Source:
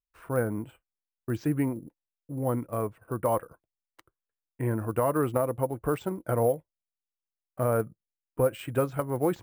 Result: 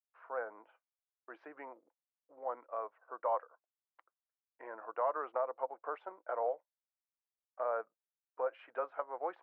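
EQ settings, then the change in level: high-pass 630 Hz 24 dB/octave; low-pass 1.5 kHz 12 dB/octave; distance through air 180 m; -2.5 dB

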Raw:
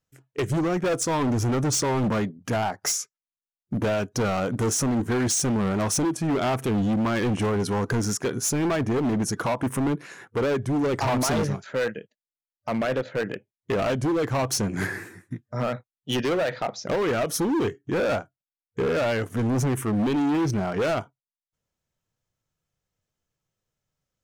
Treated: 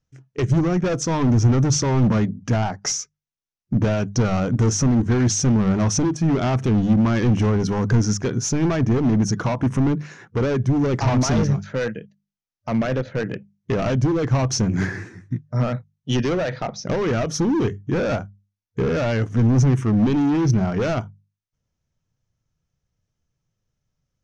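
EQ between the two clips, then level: resonant low-pass 6 kHz, resonance Q 4.4; tone controls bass +11 dB, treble -10 dB; hum notches 50/100/150/200 Hz; 0.0 dB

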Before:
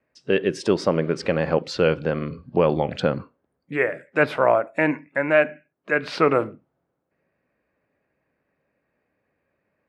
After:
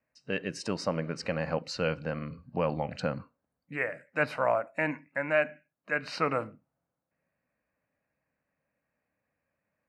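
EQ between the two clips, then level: Butterworth band-stop 3.4 kHz, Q 5.3; peaking EQ 380 Hz -12 dB 0.46 oct; dynamic bell 7 kHz, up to +4 dB, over -43 dBFS, Q 0.75; -7.5 dB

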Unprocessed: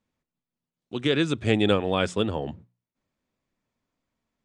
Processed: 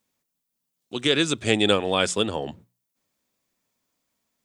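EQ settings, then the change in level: tilt EQ +3 dB/octave; peaking EQ 2.1 kHz -5 dB 2.6 oct; +5.5 dB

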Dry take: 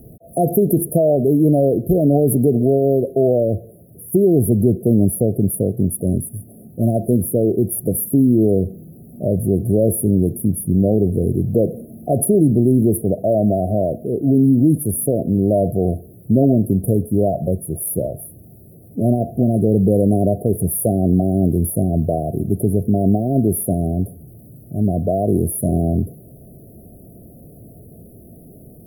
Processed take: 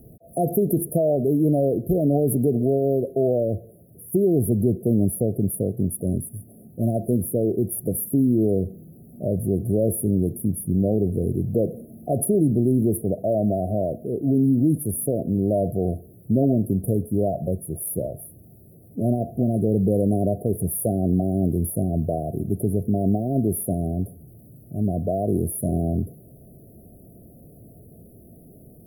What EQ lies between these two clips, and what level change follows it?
flat; -5.5 dB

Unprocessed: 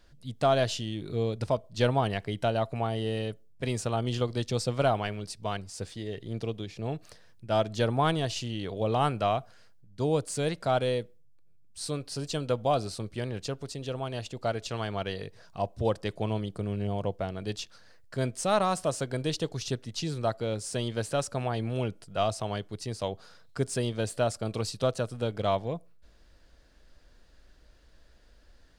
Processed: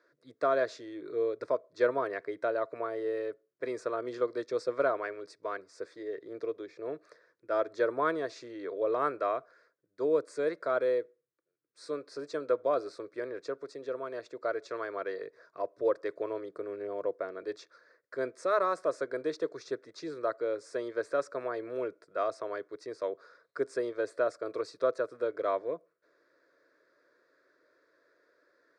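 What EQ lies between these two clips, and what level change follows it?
high-pass 240 Hz 24 dB/octave; low-pass 3 kHz 12 dB/octave; static phaser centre 800 Hz, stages 6; +1.5 dB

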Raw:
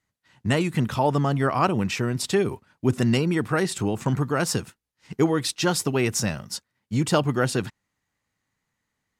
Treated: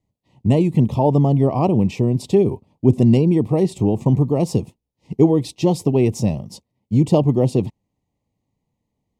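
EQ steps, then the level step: Butterworth band-stop 1.5 kHz, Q 1.1; tilt shelf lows +8.5 dB, about 1.3 kHz; 0.0 dB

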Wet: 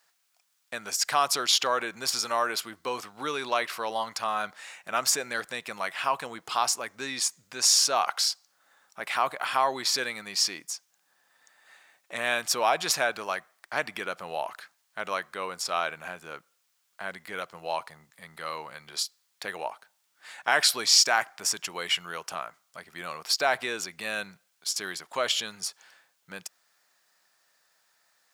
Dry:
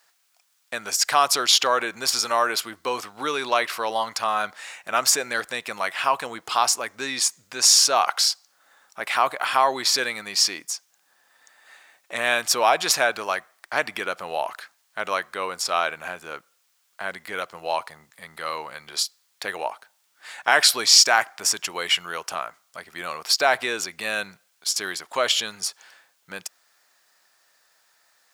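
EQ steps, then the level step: peaking EQ 160 Hz +5 dB 0.89 oct; -5.5 dB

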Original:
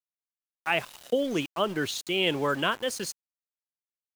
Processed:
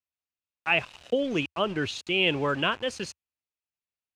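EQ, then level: distance through air 86 m; peaking EQ 80 Hz +11.5 dB 0.96 oct; peaking EQ 2.6 kHz +8 dB 0.29 oct; 0.0 dB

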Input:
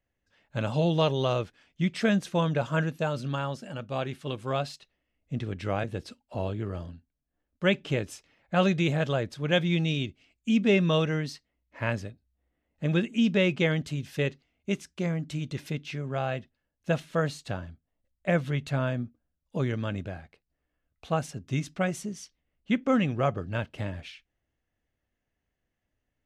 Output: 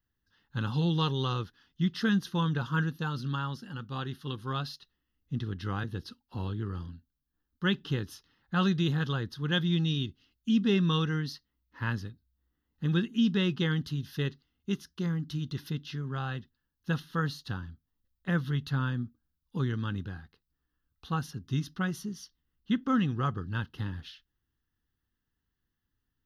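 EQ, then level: treble shelf 7.8 kHz +7 dB; static phaser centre 2.3 kHz, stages 6; 0.0 dB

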